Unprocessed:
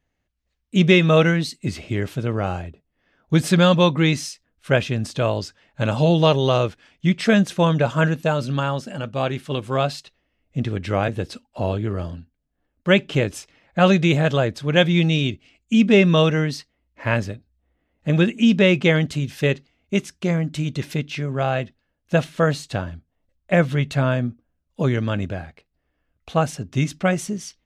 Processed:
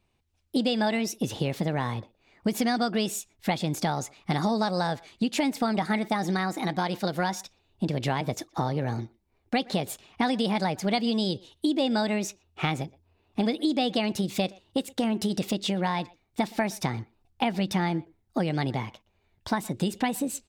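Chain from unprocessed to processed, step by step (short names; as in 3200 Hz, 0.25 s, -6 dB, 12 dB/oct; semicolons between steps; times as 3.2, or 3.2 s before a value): compressor 6:1, threshold -26 dBFS, peak gain reduction 15.5 dB; speed mistake 33 rpm record played at 45 rpm; speakerphone echo 0.12 s, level -23 dB; gain +2.5 dB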